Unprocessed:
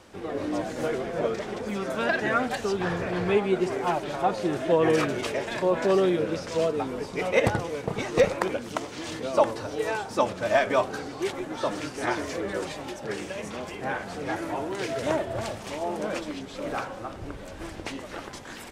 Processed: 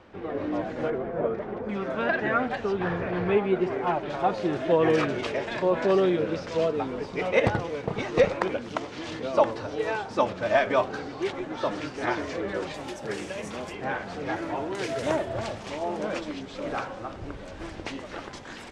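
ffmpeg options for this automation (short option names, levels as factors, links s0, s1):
-af "asetnsamples=n=441:p=0,asendcmd='0.9 lowpass f 1400;1.69 lowpass f 2700;4.1 lowpass f 4600;12.74 lowpass f 11000;13.73 lowpass f 5200;14.75 lowpass f 10000;15.29 lowpass f 6100',lowpass=2700"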